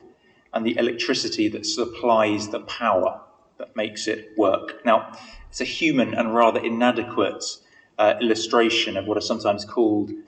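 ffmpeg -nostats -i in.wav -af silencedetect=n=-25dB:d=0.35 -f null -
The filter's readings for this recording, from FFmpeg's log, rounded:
silence_start: 0.00
silence_end: 0.54 | silence_duration: 0.54
silence_start: 3.12
silence_end: 3.60 | silence_duration: 0.49
silence_start: 5.02
silence_end: 5.57 | silence_duration: 0.55
silence_start: 7.53
silence_end: 7.99 | silence_duration: 0.47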